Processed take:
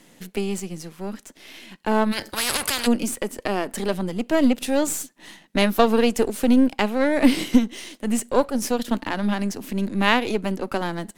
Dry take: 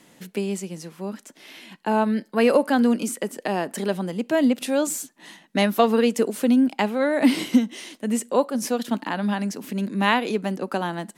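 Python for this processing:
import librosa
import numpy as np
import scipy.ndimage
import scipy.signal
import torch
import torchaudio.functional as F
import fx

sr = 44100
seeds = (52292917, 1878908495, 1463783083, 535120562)

y = np.where(x < 0.0, 10.0 ** (-7.0 / 20.0) * x, x)
y = fx.peak_eq(y, sr, hz=1000.0, db=-2.5, octaves=1.5)
y = fx.spectral_comp(y, sr, ratio=10.0, at=(2.11, 2.86), fade=0.02)
y = y * 10.0 ** (4.0 / 20.0)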